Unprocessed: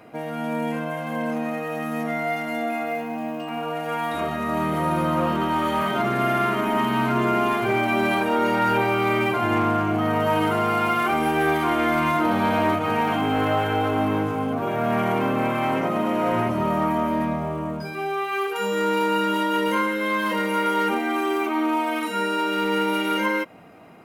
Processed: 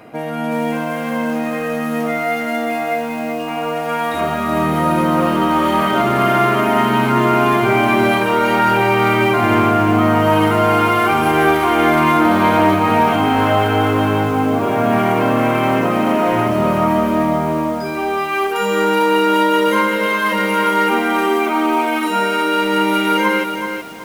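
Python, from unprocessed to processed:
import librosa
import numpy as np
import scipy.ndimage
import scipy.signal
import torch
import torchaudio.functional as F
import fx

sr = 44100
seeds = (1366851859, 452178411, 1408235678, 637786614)

y = fx.echo_crushed(x, sr, ms=375, feedback_pct=35, bits=7, wet_db=-6.5)
y = F.gain(torch.from_numpy(y), 6.5).numpy()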